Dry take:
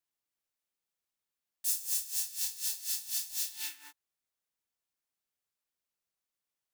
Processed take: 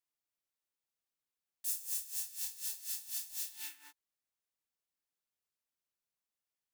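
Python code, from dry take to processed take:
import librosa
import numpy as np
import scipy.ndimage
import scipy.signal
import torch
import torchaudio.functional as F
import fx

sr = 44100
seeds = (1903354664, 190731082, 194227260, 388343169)

y = fx.dynamic_eq(x, sr, hz=4700.0, q=0.99, threshold_db=-51.0, ratio=4.0, max_db=-4)
y = F.gain(torch.from_numpy(y), -4.5).numpy()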